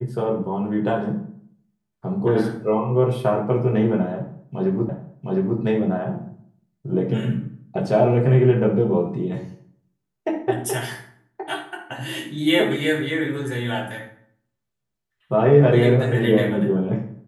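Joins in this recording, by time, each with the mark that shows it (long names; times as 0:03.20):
0:04.89: the same again, the last 0.71 s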